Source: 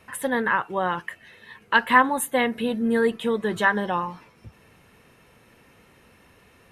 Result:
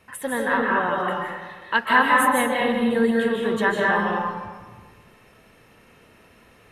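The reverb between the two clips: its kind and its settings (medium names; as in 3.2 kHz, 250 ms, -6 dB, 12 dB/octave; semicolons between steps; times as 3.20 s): algorithmic reverb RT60 1.4 s, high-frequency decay 0.6×, pre-delay 115 ms, DRR -3.5 dB; trim -2.5 dB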